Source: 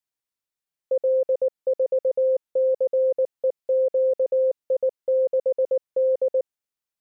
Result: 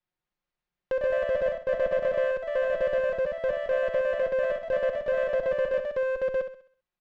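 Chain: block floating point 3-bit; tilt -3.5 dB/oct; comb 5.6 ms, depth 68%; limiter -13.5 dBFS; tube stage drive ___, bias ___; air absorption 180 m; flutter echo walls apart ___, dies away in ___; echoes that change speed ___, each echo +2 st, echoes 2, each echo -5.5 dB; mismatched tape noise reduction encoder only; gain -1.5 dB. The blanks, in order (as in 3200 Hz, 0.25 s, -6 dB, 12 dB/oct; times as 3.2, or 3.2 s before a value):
21 dB, 0.25, 11.3 m, 0.44 s, 0.199 s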